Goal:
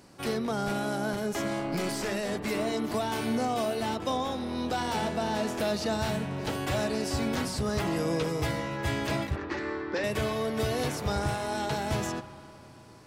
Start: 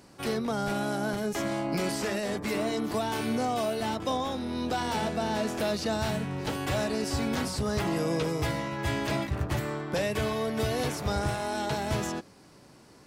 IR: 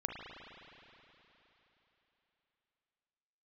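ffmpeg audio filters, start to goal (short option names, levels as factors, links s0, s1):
-filter_complex "[0:a]asettb=1/sr,asplit=3[s0][s1][s2];[s0]atrim=end=1.584[s3];[s1]atrim=start=1.58:end=2.1,asetpts=PTS-STARTPTS,afade=t=in:d=0.004:c=qsin,afade=t=out:st=0.516:d=0.004:c=qsin,aeval=exprs='clip(val(0),-1,0.0398)':c=same[s4];[s2]atrim=start=2.096[s5];[s3][s4]acrossfade=d=0.004:c1=hsin:c2=qsin[s6];[s6][s5]acrossfade=d=0.004:c1=qsin:c2=hsin,asettb=1/sr,asplit=3[s7][s8][s9];[s7]atrim=end=9.364[s10];[s8]atrim=start=9.36:end=10.04,asetpts=PTS-STARTPTS,afade=t=in:d=0.004:c=qsin,afade=t=out:st=0.676:d=0.004:c=qsin,highpass=f=240:w=0.5412,highpass=f=240:w=1.3066,equalizer=f=350:t=q:w=4:g=6,equalizer=f=680:t=q:w=4:g=-10,equalizer=f=1800:t=q:w=4:g=5,equalizer=f=3200:t=q:w=4:g=-7,lowpass=f=5300:w=0.5412,lowpass=f=5300:w=1.3066[s11];[s9]atrim=start=10.036[s12];[s10][s11]acrossfade=d=0.004:c1=hsin:c2=qsin[s13];[s13][s12]acrossfade=d=0.004:c1=qsin:c2=hsin,asplit=2[s14][s15];[1:a]atrim=start_sample=2205[s16];[s15][s16]afir=irnorm=-1:irlink=0,volume=0.316[s17];[s14][s17]amix=inputs=2:normalize=0,volume=0.75"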